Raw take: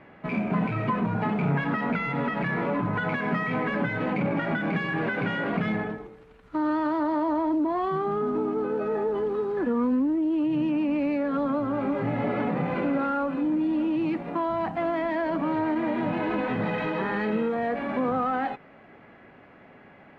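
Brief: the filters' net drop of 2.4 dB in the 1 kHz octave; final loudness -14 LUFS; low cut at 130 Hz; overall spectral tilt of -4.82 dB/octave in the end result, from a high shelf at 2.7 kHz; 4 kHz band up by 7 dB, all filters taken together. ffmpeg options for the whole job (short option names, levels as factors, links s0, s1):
-af "highpass=130,equalizer=f=1000:t=o:g=-4,highshelf=f=2700:g=3,equalizer=f=4000:t=o:g=8,volume=4.73"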